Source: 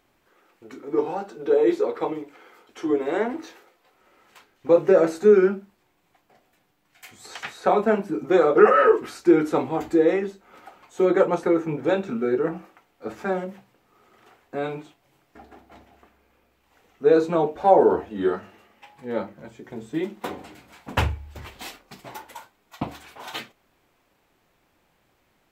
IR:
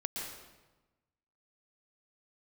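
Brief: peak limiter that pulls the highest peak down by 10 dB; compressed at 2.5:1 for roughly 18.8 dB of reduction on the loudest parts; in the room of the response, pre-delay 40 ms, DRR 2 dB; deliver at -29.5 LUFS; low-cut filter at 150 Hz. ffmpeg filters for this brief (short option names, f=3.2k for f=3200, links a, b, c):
-filter_complex "[0:a]highpass=150,acompressor=threshold=-40dB:ratio=2.5,alimiter=level_in=7dB:limit=-24dB:level=0:latency=1,volume=-7dB,asplit=2[a][b];[1:a]atrim=start_sample=2205,adelay=40[c];[b][c]afir=irnorm=-1:irlink=0,volume=-4dB[d];[a][d]amix=inputs=2:normalize=0,volume=10.5dB"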